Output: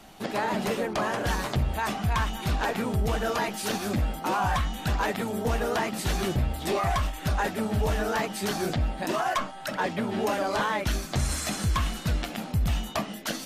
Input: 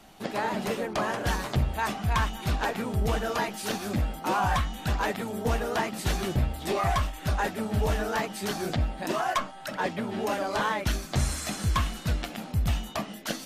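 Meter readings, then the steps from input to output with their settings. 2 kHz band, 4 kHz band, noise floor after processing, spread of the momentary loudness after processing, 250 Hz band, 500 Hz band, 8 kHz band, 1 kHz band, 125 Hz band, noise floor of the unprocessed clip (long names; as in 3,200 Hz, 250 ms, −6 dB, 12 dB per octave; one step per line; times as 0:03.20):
+1.0 dB, +1.0 dB, −39 dBFS, 3 LU, +1.5 dB, +1.5 dB, +1.5 dB, +0.5 dB, +0.5 dB, −42 dBFS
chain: brickwall limiter −21 dBFS, peak gain reduction 4.5 dB
level +3 dB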